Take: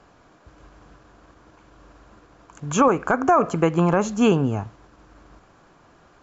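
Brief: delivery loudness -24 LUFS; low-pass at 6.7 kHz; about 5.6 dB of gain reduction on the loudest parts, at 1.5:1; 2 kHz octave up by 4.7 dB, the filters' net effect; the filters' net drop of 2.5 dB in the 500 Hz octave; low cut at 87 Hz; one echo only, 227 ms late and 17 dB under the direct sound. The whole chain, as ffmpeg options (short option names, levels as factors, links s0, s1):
-af "highpass=87,lowpass=6700,equalizer=f=500:t=o:g=-3.5,equalizer=f=2000:t=o:g=7.5,acompressor=threshold=0.0398:ratio=1.5,aecho=1:1:227:0.141,volume=1.19"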